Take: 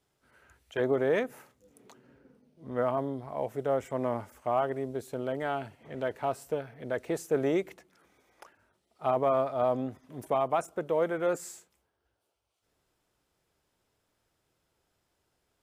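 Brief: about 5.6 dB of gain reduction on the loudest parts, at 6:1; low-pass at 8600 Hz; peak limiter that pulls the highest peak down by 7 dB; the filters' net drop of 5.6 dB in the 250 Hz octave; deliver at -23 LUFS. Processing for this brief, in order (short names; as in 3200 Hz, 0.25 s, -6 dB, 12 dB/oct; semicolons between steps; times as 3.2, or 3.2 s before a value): LPF 8600 Hz; bell 250 Hz -7.5 dB; compressor 6:1, threshold -29 dBFS; gain +15.5 dB; limiter -11 dBFS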